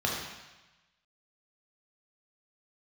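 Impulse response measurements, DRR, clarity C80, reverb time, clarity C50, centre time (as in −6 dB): −3.0 dB, 3.5 dB, 1.1 s, 1.5 dB, 64 ms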